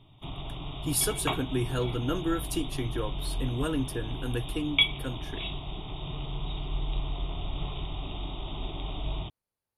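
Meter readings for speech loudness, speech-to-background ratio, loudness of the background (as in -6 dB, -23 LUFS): -32.0 LUFS, 2.5 dB, -34.5 LUFS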